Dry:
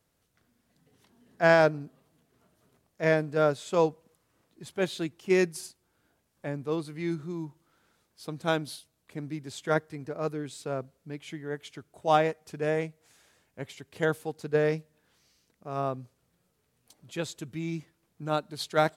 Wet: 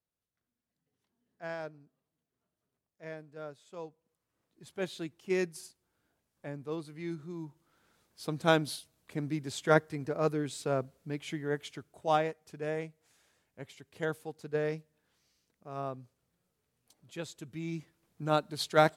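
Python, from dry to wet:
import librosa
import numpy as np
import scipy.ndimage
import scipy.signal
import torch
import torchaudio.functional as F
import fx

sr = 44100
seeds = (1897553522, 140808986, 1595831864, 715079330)

y = fx.gain(x, sr, db=fx.line((3.88, -19.5), (4.73, -7.0), (7.22, -7.0), (8.28, 2.0), (11.57, 2.0), (12.31, -7.0), (17.33, -7.0), (18.24, 0.5)))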